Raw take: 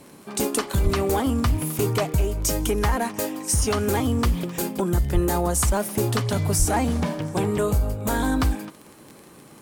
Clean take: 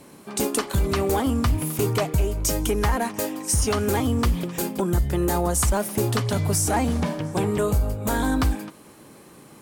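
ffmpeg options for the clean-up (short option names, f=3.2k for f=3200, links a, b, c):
-filter_complex "[0:a]adeclick=t=4,asplit=3[a][b][c];[a]afade=t=out:st=0.83:d=0.02[d];[b]highpass=f=140:w=0.5412,highpass=f=140:w=1.3066,afade=t=in:st=0.83:d=0.02,afade=t=out:st=0.95:d=0.02[e];[c]afade=t=in:st=0.95:d=0.02[f];[d][e][f]amix=inputs=3:normalize=0,asplit=3[g][h][i];[g]afade=t=out:st=5.13:d=0.02[j];[h]highpass=f=140:w=0.5412,highpass=f=140:w=1.3066,afade=t=in:st=5.13:d=0.02,afade=t=out:st=5.25:d=0.02[k];[i]afade=t=in:st=5.25:d=0.02[l];[j][k][l]amix=inputs=3:normalize=0,asplit=3[m][n][o];[m]afade=t=out:st=6.58:d=0.02[p];[n]highpass=f=140:w=0.5412,highpass=f=140:w=1.3066,afade=t=in:st=6.58:d=0.02,afade=t=out:st=6.7:d=0.02[q];[o]afade=t=in:st=6.7:d=0.02[r];[p][q][r]amix=inputs=3:normalize=0"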